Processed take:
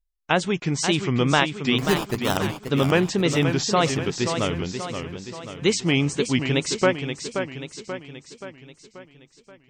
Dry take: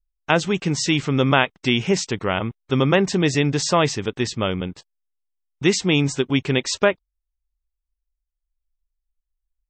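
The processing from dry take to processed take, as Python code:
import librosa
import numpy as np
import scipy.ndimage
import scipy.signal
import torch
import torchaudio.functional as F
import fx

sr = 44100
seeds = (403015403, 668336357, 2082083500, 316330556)

y = fx.sample_hold(x, sr, seeds[0], rate_hz=2200.0, jitter_pct=0, at=(1.78, 2.38))
y = fx.wow_flutter(y, sr, seeds[1], rate_hz=2.1, depth_cents=150.0)
y = fx.echo_warbled(y, sr, ms=531, feedback_pct=53, rate_hz=2.8, cents=145, wet_db=-7.5)
y = F.gain(torch.from_numpy(y), -2.5).numpy()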